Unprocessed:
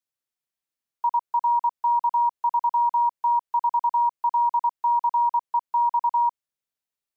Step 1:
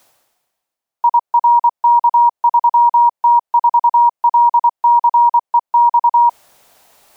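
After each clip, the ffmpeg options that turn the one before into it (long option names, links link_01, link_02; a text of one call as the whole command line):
ffmpeg -i in.wav -af "equalizer=frequency=740:width_type=o:width=1.2:gain=11.5,areverse,acompressor=mode=upward:threshold=-26dB:ratio=2.5,areverse,volume=2.5dB" out.wav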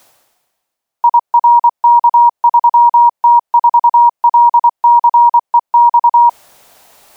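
ffmpeg -i in.wav -af "apsyclip=9dB,volume=-3.5dB" out.wav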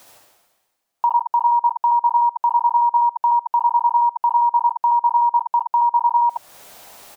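ffmpeg -i in.wav -filter_complex "[0:a]acompressor=threshold=-23dB:ratio=2,asplit=2[link_01][link_02];[link_02]aecho=0:1:67|77:0.562|0.631[link_03];[link_01][link_03]amix=inputs=2:normalize=0" out.wav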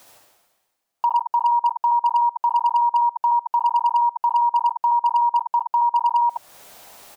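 ffmpeg -i in.wav -af "asoftclip=type=hard:threshold=-10.5dB,volume=-2dB" out.wav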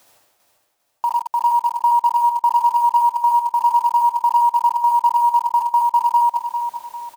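ffmpeg -i in.wav -filter_complex "[0:a]asplit=2[link_01][link_02];[link_02]acrusher=bits=4:mix=0:aa=0.000001,volume=-5.5dB[link_03];[link_01][link_03]amix=inputs=2:normalize=0,aecho=1:1:399|798|1197|1596:0.422|0.164|0.0641|0.025,volume=-4dB" out.wav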